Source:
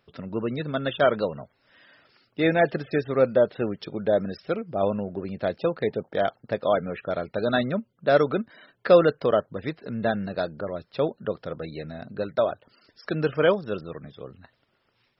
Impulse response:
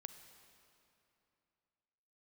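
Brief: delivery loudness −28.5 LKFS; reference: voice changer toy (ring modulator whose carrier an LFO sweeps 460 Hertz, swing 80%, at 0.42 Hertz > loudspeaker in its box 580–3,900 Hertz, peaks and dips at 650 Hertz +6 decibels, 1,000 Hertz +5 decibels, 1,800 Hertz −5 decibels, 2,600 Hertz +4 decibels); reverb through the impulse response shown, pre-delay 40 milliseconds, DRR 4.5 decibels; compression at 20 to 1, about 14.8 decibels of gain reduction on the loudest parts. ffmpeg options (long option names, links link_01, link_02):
-filter_complex "[0:a]acompressor=threshold=-25dB:ratio=20,asplit=2[link_01][link_02];[1:a]atrim=start_sample=2205,adelay=40[link_03];[link_02][link_03]afir=irnorm=-1:irlink=0,volume=0.5dB[link_04];[link_01][link_04]amix=inputs=2:normalize=0,aeval=exprs='val(0)*sin(2*PI*460*n/s+460*0.8/0.42*sin(2*PI*0.42*n/s))':channel_layout=same,highpass=580,equalizer=frequency=650:width_type=q:width=4:gain=6,equalizer=frequency=1000:width_type=q:width=4:gain=5,equalizer=frequency=1800:width_type=q:width=4:gain=-5,equalizer=frequency=2600:width_type=q:width=4:gain=4,lowpass=frequency=3900:width=0.5412,lowpass=frequency=3900:width=1.3066,volume=5.5dB"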